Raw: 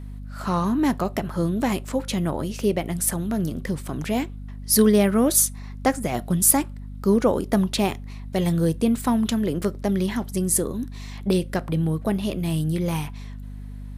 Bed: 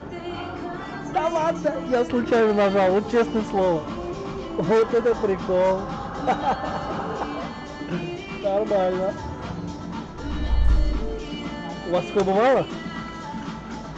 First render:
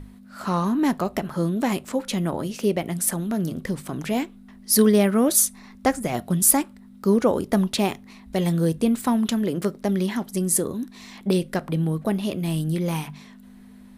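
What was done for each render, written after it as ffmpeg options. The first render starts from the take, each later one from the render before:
-af "bandreject=f=50:t=h:w=6,bandreject=f=100:t=h:w=6,bandreject=f=150:t=h:w=6"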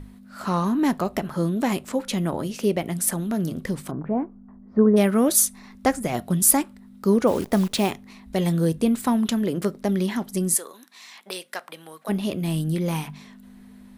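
-filter_complex "[0:a]asplit=3[a][b][c];[a]afade=t=out:st=3.9:d=0.02[d];[b]lowpass=f=1.2k:w=0.5412,lowpass=f=1.2k:w=1.3066,afade=t=in:st=3.9:d=0.02,afade=t=out:st=4.96:d=0.02[e];[c]afade=t=in:st=4.96:d=0.02[f];[d][e][f]amix=inputs=3:normalize=0,asettb=1/sr,asplit=3[g][h][i];[g]atrim=end=7.274[j];[h]atrim=start=7.27:end=7.9,asetpts=PTS-STARTPTS,afade=t=in:d=0.004:c=qsin,afade=t=out:st=0.626:d=0.004:c=qsin,acrusher=bits=7:dc=4:mix=0:aa=0.000001[k];[i]atrim=start=7.896[l];[j][k]acrossfade=d=0.004:c1=hsin:c2=qsin[m];[m][l]acrossfade=d=0.004:c1=qsin:c2=hsin,asplit=3[n][o][p];[n]afade=t=out:st=10.54:d=0.02[q];[o]highpass=910,afade=t=in:st=10.54:d=0.02,afade=t=out:st=12.08:d=0.02[r];[p]afade=t=in:st=12.08:d=0.02[s];[q][r][s]amix=inputs=3:normalize=0"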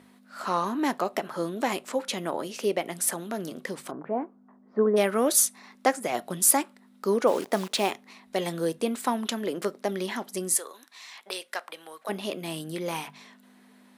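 -af "highpass=400,highshelf=f=12k:g=-8"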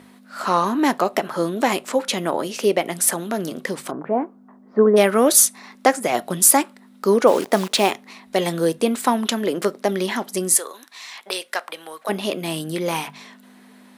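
-af "volume=8dB,alimiter=limit=-1dB:level=0:latency=1"

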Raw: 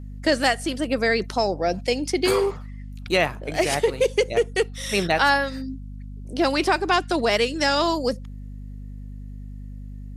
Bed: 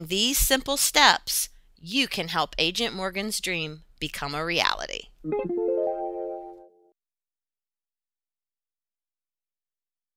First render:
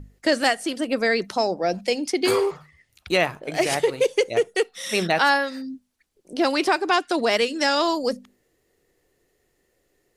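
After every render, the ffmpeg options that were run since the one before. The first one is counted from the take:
-af "bandreject=f=50:t=h:w=6,bandreject=f=100:t=h:w=6,bandreject=f=150:t=h:w=6,bandreject=f=200:t=h:w=6,bandreject=f=250:t=h:w=6"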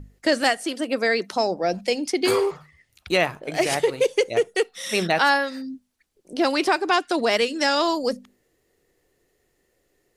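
-filter_complex "[0:a]asettb=1/sr,asplit=3[a][b][c];[a]atrim=end=0.574[d];[b]atrim=start=0.57:end=1.33,asetpts=PTS-STARTPTS,afade=t=in:d=0.004:c=qsin,afade=t=out:st=0.756:d=0.004:c=qsin,highpass=220[e];[c]atrim=start=1.326[f];[d][e]acrossfade=d=0.004:c1=hsin:c2=qsin[g];[g][f]acrossfade=d=0.004:c1=qsin:c2=hsin"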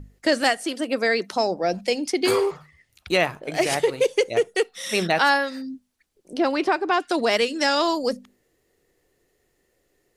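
-filter_complex "[0:a]asettb=1/sr,asplit=3[a][b][c];[a]atrim=end=6.384[d];[b]atrim=start=6.38:end=7,asetpts=PTS-STARTPTS,afade=t=in:d=0.004:c=qsin,afade=t=out:st=0.616:d=0.004:c=qsin,lowpass=f=2k:p=1[e];[c]atrim=start=6.996[f];[d][e]acrossfade=d=0.004:c1=hsin:c2=qsin[g];[g][f]acrossfade=d=0.004:c1=qsin:c2=hsin"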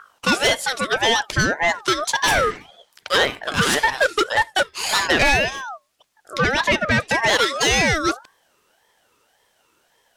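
-filter_complex "[0:a]asplit=2[a][b];[b]highpass=f=720:p=1,volume=18dB,asoftclip=type=tanh:threshold=-5dB[c];[a][c]amix=inputs=2:normalize=0,lowpass=f=7.6k:p=1,volume=-6dB,aeval=exprs='val(0)*sin(2*PI*1100*n/s+1100*0.25/1.8*sin(2*PI*1.8*n/s))':c=same"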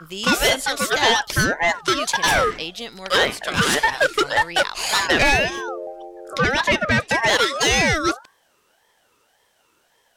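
-filter_complex "[1:a]volume=-6dB[a];[0:a][a]amix=inputs=2:normalize=0"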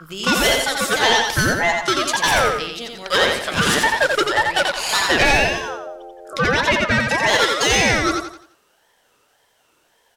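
-af "aecho=1:1:87|174|261|348|435:0.631|0.227|0.0818|0.0294|0.0106"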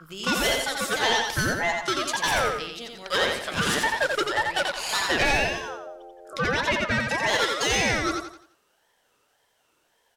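-af "volume=-7dB"

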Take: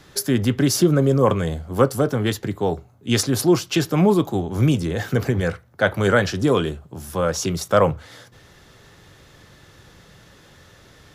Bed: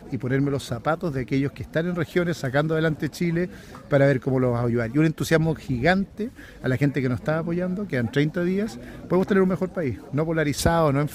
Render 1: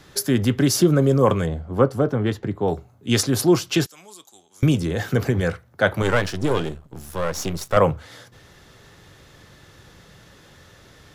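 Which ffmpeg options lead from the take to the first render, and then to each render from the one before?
-filter_complex "[0:a]asettb=1/sr,asplit=3[a][b][c];[a]atrim=end=1.464[d];[b]atrim=start=1.46:end=2.68,asetpts=PTS-STARTPTS,afade=t=in:d=0.004:c=qsin,afade=t=out:st=1.216:d=0.004:c=qsin,lowpass=f=1.5k:p=1[e];[c]atrim=start=2.676[f];[d][e]acrossfade=d=0.004:c1=hsin:c2=qsin[g];[g][f]acrossfade=d=0.004:c1=qsin:c2=hsin,asettb=1/sr,asplit=3[h][i][j];[h]atrim=end=3.864[k];[i]atrim=start=3.86:end=4.63,asetpts=PTS-STARTPTS,afade=t=in:d=0.004:c=qsin,afade=t=out:st=0.766:d=0.004:c=qsin,bandpass=f=7.6k:t=q:w=1.8[l];[j]atrim=start=4.626[m];[k][l]acrossfade=d=0.004:c1=hsin:c2=qsin[n];[n][m]acrossfade=d=0.004:c1=qsin:c2=hsin,asettb=1/sr,asplit=3[o][p][q];[o]atrim=end=6.024[r];[p]atrim=start=6.02:end=7.77,asetpts=PTS-STARTPTS,afade=t=in:d=0.004:c=qsin,afade=t=out:st=1.746:d=0.004:c=qsin,aeval=exprs='if(lt(val(0),0),0.251*val(0),val(0))':c=same[s];[q]atrim=start=7.766[t];[r][s]acrossfade=d=0.004:c1=hsin:c2=qsin[u];[u][t]acrossfade=d=0.004:c1=qsin:c2=hsin"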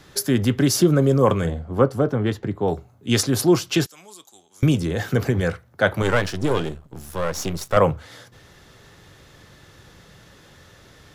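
-filter_complex "[0:a]asettb=1/sr,asplit=3[a][b][c];[a]atrim=end=1.384[d];[b]atrim=start=1.38:end=1.82,asetpts=PTS-STARTPTS,afade=t=in:d=0.004:c=qsin,afade=t=out:st=0.436:d=0.004:c=qsin,asplit=2[e][f];[f]adelay=47,volume=-11dB[g];[e][g]amix=inputs=2:normalize=0,atrim=end_sample=19404[h];[c]atrim=start=1.816[i];[d][h]acrossfade=d=0.004:c1=hsin:c2=qsin[j];[j][i]acrossfade=d=0.004:c1=qsin:c2=hsin"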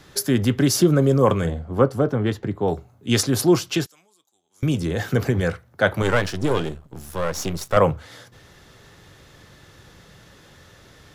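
-filter_complex "[0:a]asplit=3[a][b][c];[a]atrim=end=4.09,asetpts=PTS-STARTPTS,afade=t=out:st=3.64:d=0.45:silence=0.133352[d];[b]atrim=start=4.09:end=4.42,asetpts=PTS-STARTPTS,volume=-17.5dB[e];[c]atrim=start=4.42,asetpts=PTS-STARTPTS,afade=t=in:d=0.45:silence=0.133352[f];[d][e][f]concat=n=3:v=0:a=1"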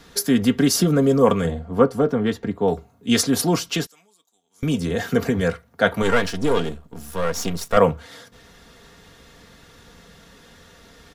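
-af "aecho=1:1:4.3:0.62"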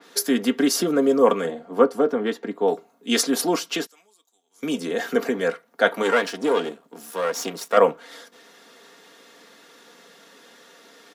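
-af "highpass=f=260:w=0.5412,highpass=f=260:w=1.3066,adynamicequalizer=threshold=0.0112:dfrequency=3200:dqfactor=0.7:tfrequency=3200:tqfactor=0.7:attack=5:release=100:ratio=0.375:range=2:mode=cutabove:tftype=highshelf"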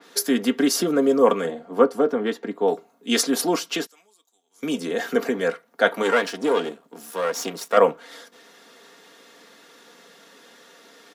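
-af anull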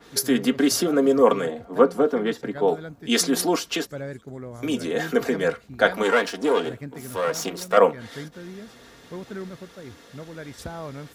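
-filter_complex "[1:a]volume=-15.5dB[a];[0:a][a]amix=inputs=2:normalize=0"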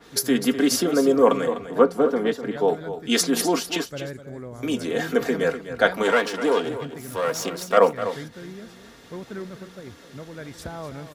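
-af "aecho=1:1:251:0.266"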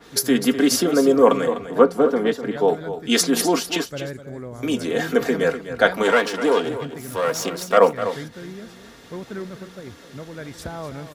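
-af "volume=2.5dB,alimiter=limit=-1dB:level=0:latency=1"

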